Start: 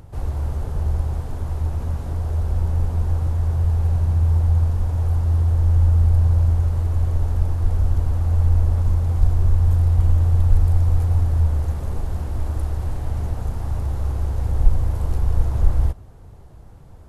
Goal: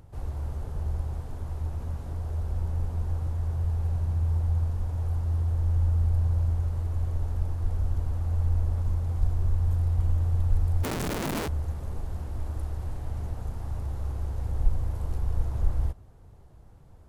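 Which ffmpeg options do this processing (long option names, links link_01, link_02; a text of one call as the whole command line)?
ffmpeg -i in.wav -filter_complex "[0:a]asplit=3[link_01][link_02][link_03];[link_01]afade=type=out:start_time=10.83:duration=0.02[link_04];[link_02]aeval=exprs='(mod(7.08*val(0)+1,2)-1)/7.08':channel_layout=same,afade=type=in:start_time=10.83:duration=0.02,afade=type=out:start_time=11.47:duration=0.02[link_05];[link_03]afade=type=in:start_time=11.47:duration=0.02[link_06];[link_04][link_05][link_06]amix=inputs=3:normalize=0,volume=-8.5dB" out.wav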